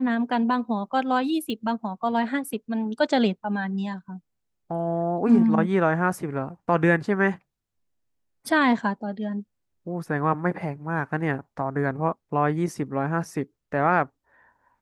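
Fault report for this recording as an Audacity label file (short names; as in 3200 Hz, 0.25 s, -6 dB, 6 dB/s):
1.500000	1.500000	pop -20 dBFS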